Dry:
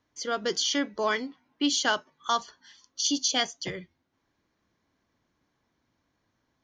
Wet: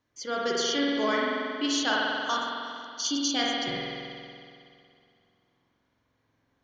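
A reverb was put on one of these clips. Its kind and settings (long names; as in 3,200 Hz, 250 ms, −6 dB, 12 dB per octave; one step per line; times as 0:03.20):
spring reverb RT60 2.4 s, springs 46 ms, chirp 25 ms, DRR −4 dB
level −3.5 dB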